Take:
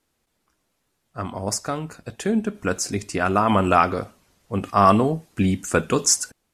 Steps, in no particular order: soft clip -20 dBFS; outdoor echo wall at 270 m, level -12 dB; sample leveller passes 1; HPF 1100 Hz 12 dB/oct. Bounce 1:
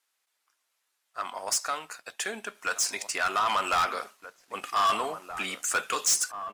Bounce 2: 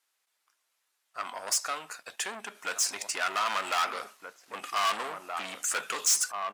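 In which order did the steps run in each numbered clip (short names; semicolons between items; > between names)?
HPF > soft clip > outdoor echo > sample leveller; outdoor echo > soft clip > sample leveller > HPF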